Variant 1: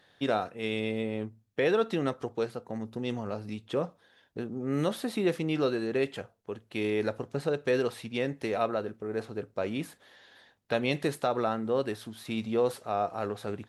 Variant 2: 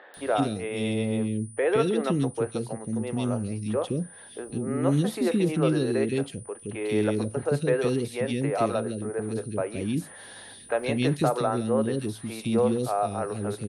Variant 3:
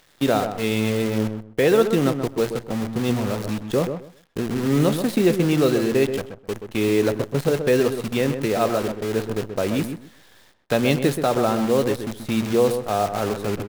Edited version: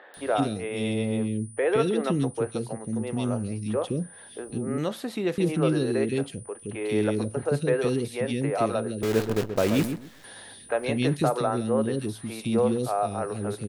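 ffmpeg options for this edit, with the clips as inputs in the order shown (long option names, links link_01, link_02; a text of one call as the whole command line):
ffmpeg -i take0.wav -i take1.wav -i take2.wav -filter_complex "[1:a]asplit=3[link_01][link_02][link_03];[link_01]atrim=end=4.782[link_04];[0:a]atrim=start=4.778:end=5.382[link_05];[link_02]atrim=start=5.378:end=9.032[link_06];[2:a]atrim=start=9.028:end=10.242[link_07];[link_03]atrim=start=10.238[link_08];[link_04][link_05]acrossfade=duration=0.004:curve1=hsin:curve2=hsin[link_09];[link_09][link_06]acrossfade=duration=0.004:curve1=hsin:curve2=hsin[link_10];[link_10][link_07]acrossfade=duration=0.004:curve1=hsin:curve2=hsin[link_11];[link_11][link_08]acrossfade=duration=0.004:curve1=hsin:curve2=hsin" out.wav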